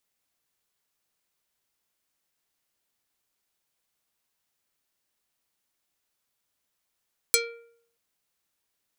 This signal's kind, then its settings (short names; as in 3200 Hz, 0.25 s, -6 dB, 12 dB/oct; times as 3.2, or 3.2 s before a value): plucked string A#4, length 0.63 s, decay 0.65 s, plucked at 0.5, dark